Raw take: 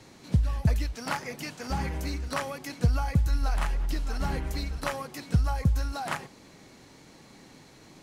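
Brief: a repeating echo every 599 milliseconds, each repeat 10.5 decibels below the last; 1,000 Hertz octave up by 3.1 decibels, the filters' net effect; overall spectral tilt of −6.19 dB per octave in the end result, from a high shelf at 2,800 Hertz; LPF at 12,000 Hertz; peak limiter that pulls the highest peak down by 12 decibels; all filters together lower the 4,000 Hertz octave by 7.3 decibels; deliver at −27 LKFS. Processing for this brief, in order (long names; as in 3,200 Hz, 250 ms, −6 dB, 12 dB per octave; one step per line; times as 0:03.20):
low-pass filter 12,000 Hz
parametric band 1,000 Hz +5 dB
high-shelf EQ 2,800 Hz −6.5 dB
parametric band 4,000 Hz −4 dB
brickwall limiter −23.5 dBFS
repeating echo 599 ms, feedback 30%, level −10.5 dB
level +7 dB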